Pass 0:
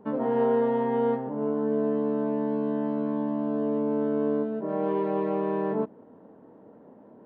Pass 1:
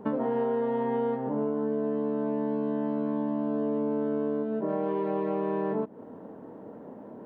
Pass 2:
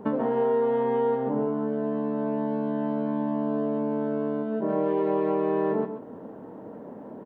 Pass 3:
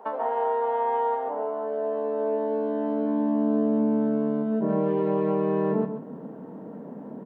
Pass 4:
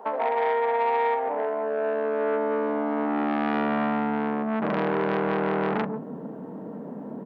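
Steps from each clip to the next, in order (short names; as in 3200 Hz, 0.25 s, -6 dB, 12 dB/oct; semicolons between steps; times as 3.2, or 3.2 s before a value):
compressor 6:1, threshold -33 dBFS, peak gain reduction 12 dB; gain +7 dB
echo 0.135 s -8.5 dB; gain +2.5 dB
on a send at -14.5 dB: reverb RT60 1.1 s, pre-delay 4 ms; on the sum: high-pass sweep 750 Hz -> 160 Hz, 1.18–4.49; gain -1.5 dB
core saturation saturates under 1400 Hz; gain +3 dB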